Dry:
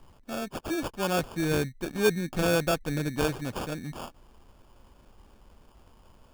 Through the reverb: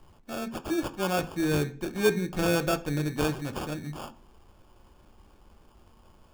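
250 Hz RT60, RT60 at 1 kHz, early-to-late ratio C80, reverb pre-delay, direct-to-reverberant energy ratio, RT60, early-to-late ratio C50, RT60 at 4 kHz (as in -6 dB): 0.65 s, 0.40 s, 22.5 dB, 3 ms, 7.5 dB, 0.45 s, 18.0 dB, 0.45 s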